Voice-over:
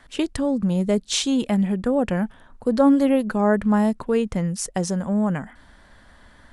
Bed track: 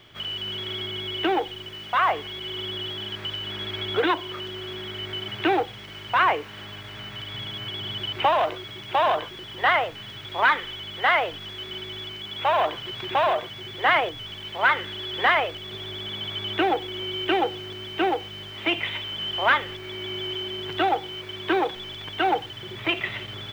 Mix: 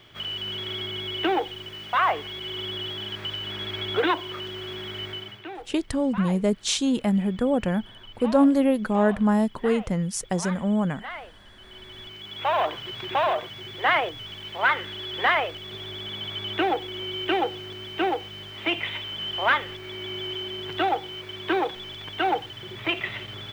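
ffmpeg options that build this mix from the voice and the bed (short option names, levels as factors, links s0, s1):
-filter_complex "[0:a]adelay=5550,volume=0.794[s0];[1:a]volume=5.31,afade=t=out:st=5.03:d=0.41:silence=0.158489,afade=t=in:st=11.56:d=1.03:silence=0.177828[s1];[s0][s1]amix=inputs=2:normalize=0"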